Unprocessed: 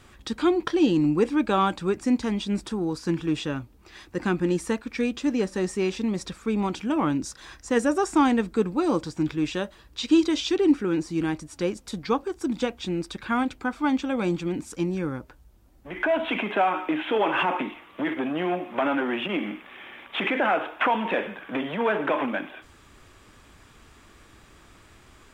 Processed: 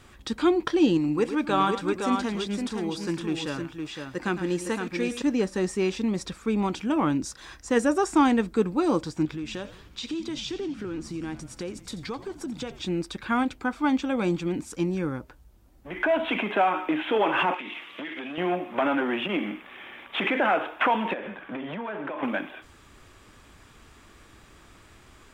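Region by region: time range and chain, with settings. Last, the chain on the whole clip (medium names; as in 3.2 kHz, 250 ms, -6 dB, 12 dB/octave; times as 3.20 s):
0.97–5.22 s: bass shelf 370 Hz -6.5 dB + multi-tap echo 108/512 ms -11.5/-5.5 dB
9.25–12.82 s: compression 4:1, threshold -31 dBFS + frequency-shifting echo 86 ms, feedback 64%, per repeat -94 Hz, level -15 dB
17.54–18.38 s: frequency weighting D + compression 8:1, threshold -32 dBFS
21.13–22.23 s: treble shelf 3.9 kHz -9.5 dB + band-stop 450 Hz + compression, threshold -30 dBFS
whole clip: none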